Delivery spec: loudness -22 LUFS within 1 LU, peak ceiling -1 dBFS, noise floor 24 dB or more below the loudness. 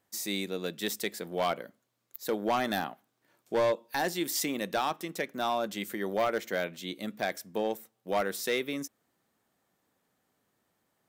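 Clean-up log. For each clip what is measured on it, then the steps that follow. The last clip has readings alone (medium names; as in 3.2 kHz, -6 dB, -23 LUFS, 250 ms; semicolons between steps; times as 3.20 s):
clipped samples 0.9%; clipping level -21.5 dBFS; loudness -32.5 LUFS; peak level -21.5 dBFS; loudness target -22.0 LUFS
-> clip repair -21.5 dBFS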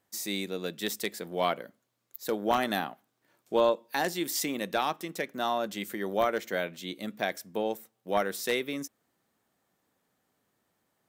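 clipped samples 0.0%; loudness -31.5 LUFS; peak level -12.5 dBFS; loudness target -22.0 LUFS
-> trim +9.5 dB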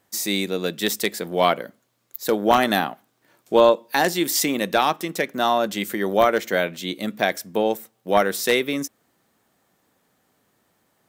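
loudness -22.0 LUFS; peak level -3.0 dBFS; noise floor -68 dBFS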